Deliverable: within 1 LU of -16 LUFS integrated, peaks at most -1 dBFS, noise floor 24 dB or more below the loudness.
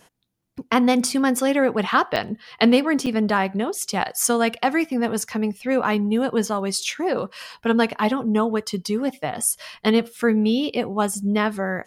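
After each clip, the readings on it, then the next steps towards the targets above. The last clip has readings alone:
dropouts 2; longest dropout 6.6 ms; loudness -21.5 LUFS; peak level -3.5 dBFS; loudness target -16.0 LUFS
-> interpolate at 2.16/3.06 s, 6.6 ms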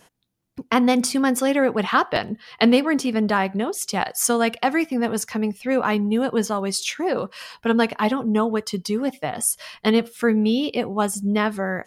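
dropouts 0; loudness -21.5 LUFS; peak level -3.5 dBFS; loudness target -16.0 LUFS
-> trim +5.5 dB; peak limiter -1 dBFS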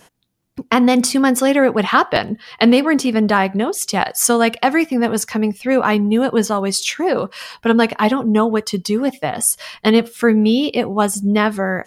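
loudness -16.5 LUFS; peak level -1.0 dBFS; noise floor -55 dBFS

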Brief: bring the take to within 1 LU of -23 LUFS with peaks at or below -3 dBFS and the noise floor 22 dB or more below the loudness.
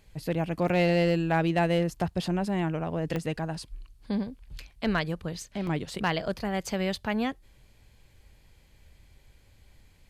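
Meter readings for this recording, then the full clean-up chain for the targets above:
clipped samples 0.3%; clipping level -16.5 dBFS; dropouts 3; longest dropout 1.8 ms; loudness -29.0 LUFS; peak level -16.5 dBFS; loudness target -23.0 LUFS
-> clip repair -16.5 dBFS; interpolate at 0.68/3.16/5.67 s, 1.8 ms; trim +6 dB

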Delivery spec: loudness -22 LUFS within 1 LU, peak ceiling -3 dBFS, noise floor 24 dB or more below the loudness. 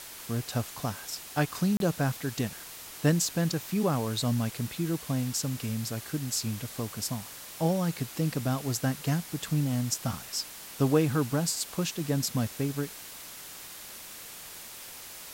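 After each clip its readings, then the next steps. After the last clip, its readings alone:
dropouts 1; longest dropout 32 ms; noise floor -45 dBFS; noise floor target -54 dBFS; loudness -30.0 LUFS; peak level -12.5 dBFS; loudness target -22.0 LUFS
-> interpolate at 1.77 s, 32 ms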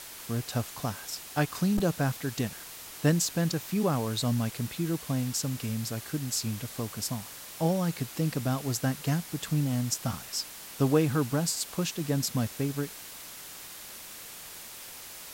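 dropouts 0; noise floor -45 dBFS; noise floor target -54 dBFS
-> noise reduction 9 dB, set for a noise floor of -45 dBFS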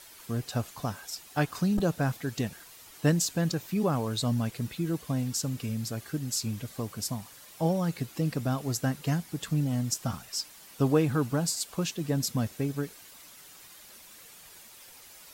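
noise floor -51 dBFS; noise floor target -55 dBFS
-> noise reduction 6 dB, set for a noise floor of -51 dBFS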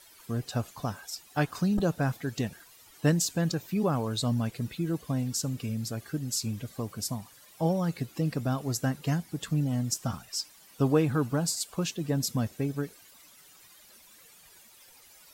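noise floor -56 dBFS; loudness -30.5 LUFS; peak level -13.0 dBFS; loudness target -22.0 LUFS
-> trim +8.5 dB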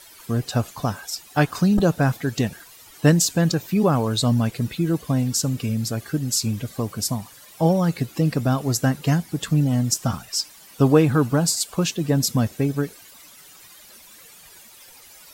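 loudness -22.0 LUFS; peak level -4.5 dBFS; noise floor -47 dBFS

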